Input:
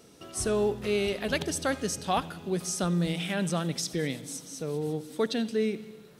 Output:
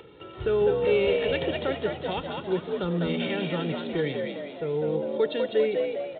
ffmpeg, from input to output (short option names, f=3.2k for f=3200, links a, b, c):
-filter_complex "[0:a]acrossover=split=340|480|2200[a][b][c][d];[c]alimiter=level_in=6dB:limit=-24dB:level=0:latency=1:release=356,volume=-6dB[e];[a][b][e][d]amix=inputs=4:normalize=0,equalizer=f=120:t=o:w=2.9:g=5,acompressor=mode=upward:threshold=-43dB:ratio=2.5,lowshelf=f=160:g=-6.5,aecho=1:1:2.2:0.68,asplit=7[f][g][h][i][j][k][l];[g]adelay=201,afreqshift=67,volume=-4dB[m];[h]adelay=402,afreqshift=134,volume=-10dB[n];[i]adelay=603,afreqshift=201,volume=-16dB[o];[j]adelay=804,afreqshift=268,volume=-22.1dB[p];[k]adelay=1005,afreqshift=335,volume=-28.1dB[q];[l]adelay=1206,afreqshift=402,volume=-34.1dB[r];[f][m][n][o][p][q][r]amix=inputs=7:normalize=0,aresample=8000,aresample=44100"